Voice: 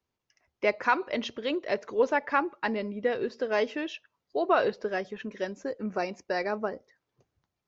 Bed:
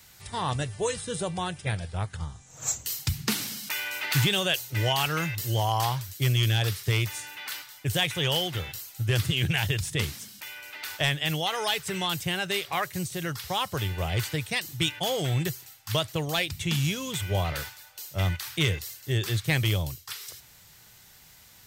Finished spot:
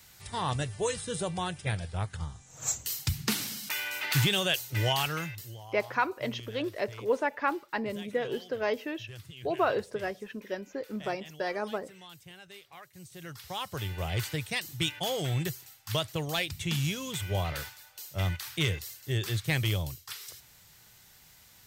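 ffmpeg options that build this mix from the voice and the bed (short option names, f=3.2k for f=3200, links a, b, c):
-filter_complex "[0:a]adelay=5100,volume=-3dB[a];[1:a]volume=15.5dB,afade=t=out:st=4.92:d=0.66:silence=0.112202,afade=t=in:st=12.92:d=1.2:silence=0.133352[b];[a][b]amix=inputs=2:normalize=0"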